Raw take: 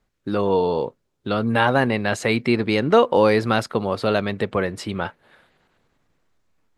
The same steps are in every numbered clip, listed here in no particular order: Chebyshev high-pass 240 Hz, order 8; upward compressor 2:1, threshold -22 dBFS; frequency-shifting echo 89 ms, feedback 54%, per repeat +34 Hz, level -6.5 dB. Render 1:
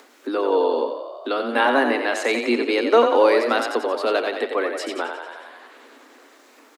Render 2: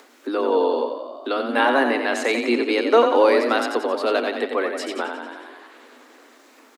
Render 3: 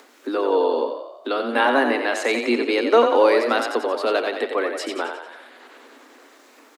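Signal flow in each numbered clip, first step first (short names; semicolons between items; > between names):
Chebyshev high-pass > frequency-shifting echo > upward compressor; frequency-shifting echo > Chebyshev high-pass > upward compressor; Chebyshev high-pass > upward compressor > frequency-shifting echo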